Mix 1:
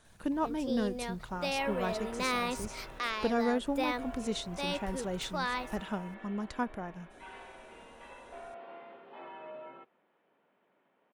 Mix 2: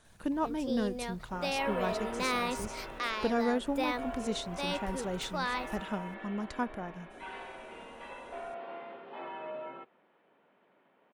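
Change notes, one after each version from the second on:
second sound +5.0 dB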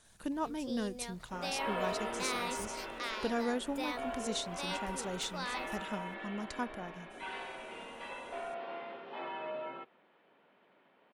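speech −4.5 dB
first sound −8.0 dB
master: add parametric band 8,300 Hz +8.5 dB 2.6 octaves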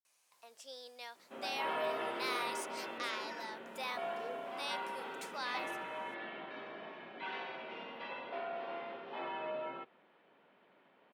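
speech: muted
first sound: add Chebyshev high-pass filter 790 Hz

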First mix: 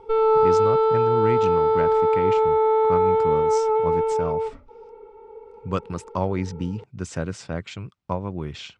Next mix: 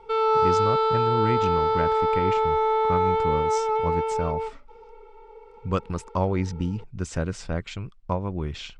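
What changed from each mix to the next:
speech: remove high-pass filter 89 Hz 24 dB per octave
background: add spectral tilt +4.5 dB per octave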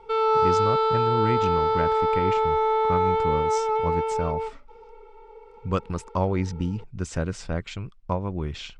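nothing changed

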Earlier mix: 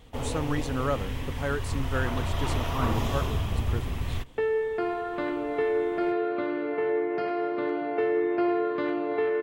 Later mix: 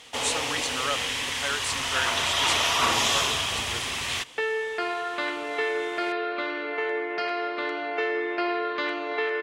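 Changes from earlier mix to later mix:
first sound +7.5 dB
second sound +3.5 dB
master: add meter weighting curve ITU-R 468

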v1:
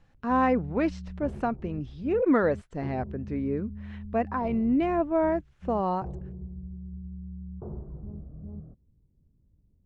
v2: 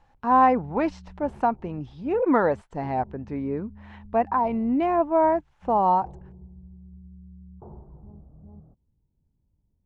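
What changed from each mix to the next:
background −6.5 dB
master: add parametric band 870 Hz +13 dB 0.6 octaves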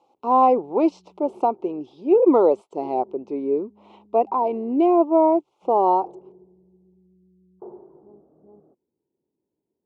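speech: add Butterworth band-reject 1,700 Hz, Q 1.3
master: add high-pass with resonance 370 Hz, resonance Q 3.7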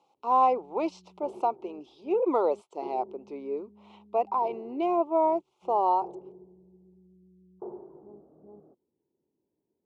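speech: add high-pass filter 1,300 Hz 6 dB per octave

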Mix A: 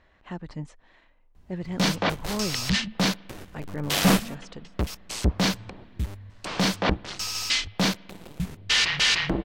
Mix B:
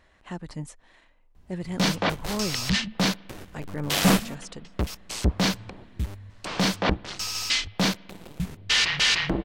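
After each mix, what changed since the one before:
speech: remove high-frequency loss of the air 120 metres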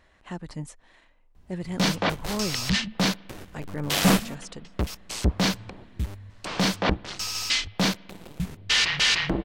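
nothing changed

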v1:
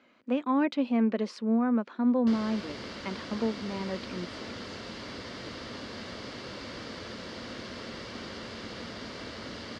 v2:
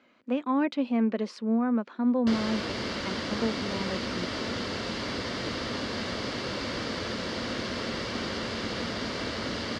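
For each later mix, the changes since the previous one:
background +8.0 dB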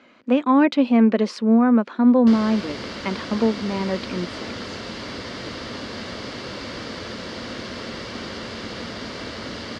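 speech +10.0 dB

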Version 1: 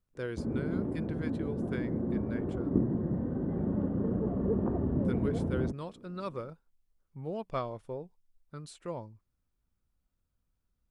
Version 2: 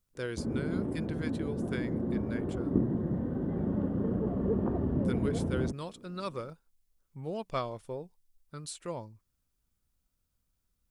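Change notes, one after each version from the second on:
master: add high-shelf EQ 3,200 Hz +11.5 dB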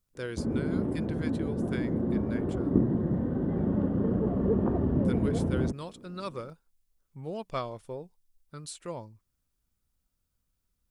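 background +3.5 dB

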